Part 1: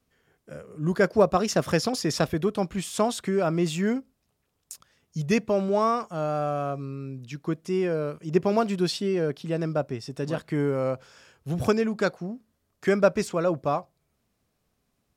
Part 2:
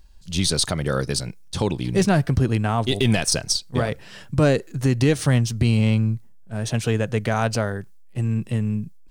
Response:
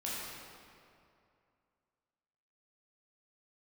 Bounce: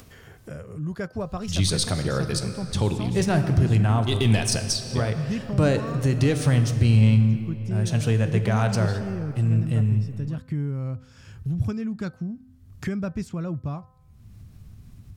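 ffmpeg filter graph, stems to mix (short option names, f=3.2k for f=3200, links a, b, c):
-filter_complex "[0:a]asubboost=boost=10:cutoff=160,volume=-13dB[a];[1:a]adelay=1200,volume=-5.5dB,asplit=2[b][c];[c]volume=-9dB[d];[2:a]atrim=start_sample=2205[e];[d][e]afir=irnorm=-1:irlink=0[f];[a][b][f]amix=inputs=3:normalize=0,equalizer=f=100:t=o:w=0.5:g=9,bandreject=f=256:t=h:w=4,bandreject=f=512:t=h:w=4,bandreject=f=768:t=h:w=4,bandreject=f=1.024k:t=h:w=4,bandreject=f=1.28k:t=h:w=4,bandreject=f=1.536k:t=h:w=4,bandreject=f=1.792k:t=h:w=4,acompressor=mode=upward:threshold=-23dB:ratio=2.5"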